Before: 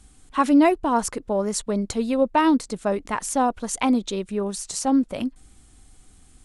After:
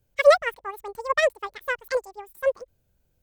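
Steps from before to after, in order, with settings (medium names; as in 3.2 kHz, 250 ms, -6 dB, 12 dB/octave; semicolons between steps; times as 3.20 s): speed mistake 7.5 ips tape played at 15 ips; upward expansion 2.5:1, over -28 dBFS; trim +4 dB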